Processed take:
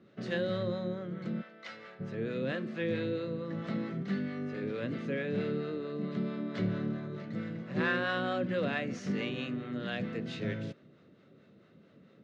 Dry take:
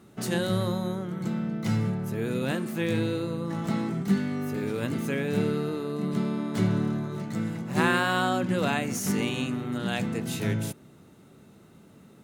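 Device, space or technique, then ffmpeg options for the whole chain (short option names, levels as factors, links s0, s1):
guitar amplifier with harmonic tremolo: -filter_complex "[0:a]acrossover=split=540[s0][s1];[s0]aeval=exprs='val(0)*(1-0.5/2+0.5/2*cos(2*PI*4.5*n/s))':c=same[s2];[s1]aeval=exprs='val(0)*(1-0.5/2-0.5/2*cos(2*PI*4.5*n/s))':c=same[s3];[s2][s3]amix=inputs=2:normalize=0,asoftclip=type=tanh:threshold=0.15,highpass=110,equalizer=f=540:t=q:w=4:g=7,equalizer=f=870:t=q:w=4:g=-10,equalizer=f=1800:t=q:w=4:g=4,lowpass=f=4500:w=0.5412,lowpass=f=4500:w=1.3066,asplit=3[s4][s5][s6];[s4]afade=t=out:st=1.41:d=0.02[s7];[s5]highpass=810,afade=t=in:st=1.41:d=0.02,afade=t=out:st=1.99:d=0.02[s8];[s6]afade=t=in:st=1.99:d=0.02[s9];[s7][s8][s9]amix=inputs=3:normalize=0,volume=0.631"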